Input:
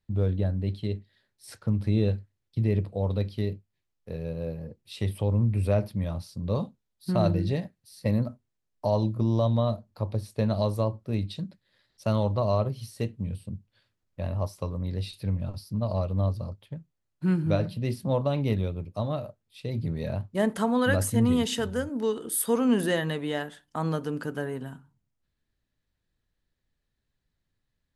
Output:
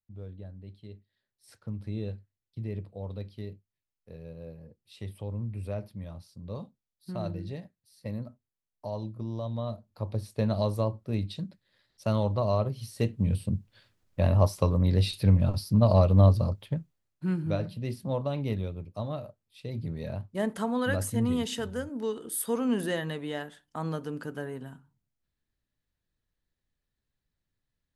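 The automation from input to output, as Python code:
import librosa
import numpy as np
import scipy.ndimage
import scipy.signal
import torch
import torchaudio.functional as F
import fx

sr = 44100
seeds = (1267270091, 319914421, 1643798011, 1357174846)

y = fx.gain(x, sr, db=fx.line((0.76, -17.0), (1.54, -10.5), (9.44, -10.5), (10.22, -1.5), (12.76, -1.5), (13.37, 7.5), (16.75, 7.5), (17.24, -4.5)))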